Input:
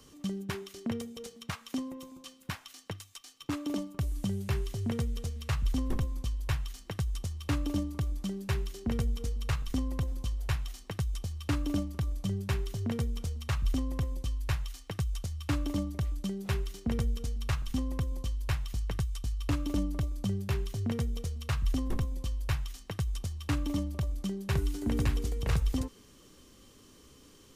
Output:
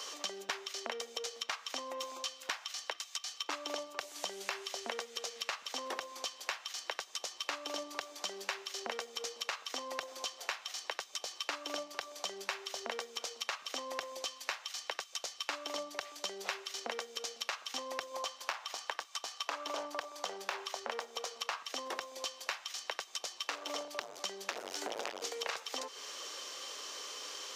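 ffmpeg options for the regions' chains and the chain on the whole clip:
-filter_complex "[0:a]asettb=1/sr,asplit=3[s0][s1][s2];[s0]atrim=end=18.144[s3];[s1]atrim=start=18.14:end=21.63,asetpts=PTS-STARTPTS,afade=t=in:d=0.004:c=qsin,afade=t=out:st=3.486:d=0.004:c=qsin,equalizer=f=960:t=o:w=1.5:g=8.5,volume=21.1,asoftclip=hard,volume=0.0473[s4];[s2]atrim=start=21.626[s5];[s3][s4]acrossfade=d=0.004:c1=hsin:c2=qsin[s6];[s6][s5]acrossfade=d=0.004:c1=qsin:c2=hsin,asettb=1/sr,asplit=3[s7][s8][s9];[s7]atrim=end=23.334[s10];[s8]atrim=start=23.33:end=25.22,asetpts=PTS-STARTPTS,afade=t=in:d=0.004:c=qsin,afade=t=out:st=1.886:d=0.004:c=qsin,asubboost=boost=9:cutoff=130,asoftclip=type=hard:threshold=0.0596[s11];[s9]atrim=start=25.216[s12];[s10][s11]acrossfade=d=0.004:c1=hsin:c2=qsin[s13];[s13][s12]acrossfade=d=0.004:c1=qsin:c2=hsin,highpass=f=560:w=0.5412,highpass=f=560:w=1.3066,highshelf=f=7800:t=q:w=1.5:g=-9.5,acompressor=threshold=0.00224:ratio=6,volume=6.68"

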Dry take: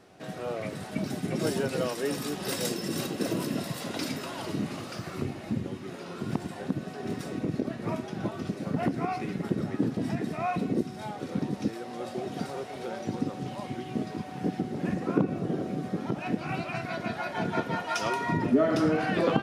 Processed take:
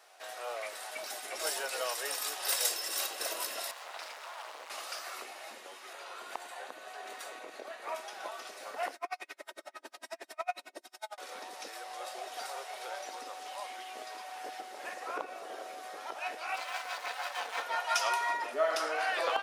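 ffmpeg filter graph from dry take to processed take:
-filter_complex "[0:a]asettb=1/sr,asplit=3[s0][s1][s2];[s0]atrim=end=3.714[s3];[s1]atrim=start=3.71:end=4.7,asetpts=PTS-STARTPTS,afade=t=in:d=0.004:c=qsin,afade=t=out:st=0.986:d=0.004:c=qsin,acrusher=bits=4:dc=4:mix=0:aa=0.000001,bandpass=f=950:t=q:w=0.56[s4];[s2]atrim=start=4.696[s5];[s3][s4]acrossfade=d=0.004:c1=hsin:c2=qsin[s6];[s6][s5]acrossfade=d=0.004:c1=qsin:c2=hsin,asettb=1/sr,asplit=3[s7][s8][s9];[s7]atrim=end=5.934[s10];[s8]atrim=start=5.93:end=7.95,asetpts=PTS-STARTPTS,afade=t=in:d=0.004:c=qsin,afade=t=out:st=2.016:d=0.004:c=qsin,highshelf=f=5400:g=-5.5,bandreject=f=5300:w=8.8[s11];[s9]atrim=start=7.946[s12];[s10][s11]acrossfade=d=0.004:c1=hsin:c2=qsin[s13];[s13][s12]acrossfade=d=0.004:c1=qsin:c2=hsin,asettb=1/sr,asplit=3[s14][s15][s16];[s14]atrim=end=8.954[s17];[s15]atrim=start=8.95:end=11.18,asetpts=PTS-STARTPTS,afade=t=in:d=0.004:c=qsin,afade=t=out:st=2.226:d=0.004:c=qsin,aecho=1:1:3.2:0.91,atrim=end_sample=98343,aeval=exprs='val(0)*pow(10,-39*(0.5-0.5*cos(2*PI*11*n/s))/20)':c=same[s18];[s16]atrim=start=11.176[s19];[s17][s18]acrossfade=d=0.004:c1=hsin:c2=qsin[s20];[s20][s19]acrossfade=d=0.004:c1=qsin:c2=hsin,asettb=1/sr,asplit=3[s21][s22][s23];[s21]atrim=end=16.564[s24];[s22]atrim=start=16.56:end=17.62,asetpts=PTS-STARTPTS,afade=t=in:d=0.004:c=qsin,afade=t=out:st=1.056:d=0.004:c=qsin,highpass=160,aecho=1:1:3.9:0.94,atrim=end_sample=46746,aeval=exprs='max(val(0),0)':c=same[s25];[s23]atrim=start=17.616[s26];[s24][s25]acrossfade=d=0.004:c1=hsin:c2=qsin[s27];[s27][s26]acrossfade=d=0.004:c1=qsin:c2=hsin,highpass=f=650:w=0.5412,highpass=f=650:w=1.3066,highshelf=f=6700:g=8"

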